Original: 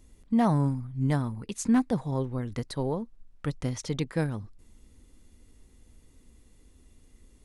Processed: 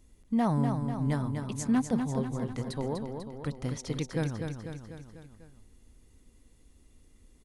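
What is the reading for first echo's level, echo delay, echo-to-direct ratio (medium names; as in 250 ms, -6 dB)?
-6.0 dB, 247 ms, -4.0 dB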